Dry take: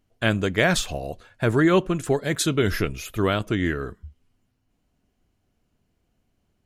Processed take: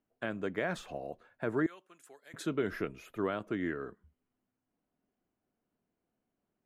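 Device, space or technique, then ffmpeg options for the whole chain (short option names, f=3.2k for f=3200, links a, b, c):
DJ mixer with the lows and highs turned down: -filter_complex "[0:a]acrossover=split=170 2100:gain=0.141 1 0.2[a][b][c];[a][b][c]amix=inputs=3:normalize=0,alimiter=limit=-12.5dB:level=0:latency=1:release=240,asettb=1/sr,asplit=3[d][e][f];[d]atrim=end=1.664[g];[e]atrim=start=1.66:end=2.34,asetpts=PTS-STARTPTS,afade=t=in:d=0.004:c=qsin,afade=t=out:st=0.676:d=0.004:c=qsin,aderivative[h];[f]atrim=start=2.336[i];[g][h]acrossfade=d=0.004:c1=hsin:c2=qsin[j];[j][i]acrossfade=d=0.004:c1=qsin:c2=hsin,volume=-8.5dB"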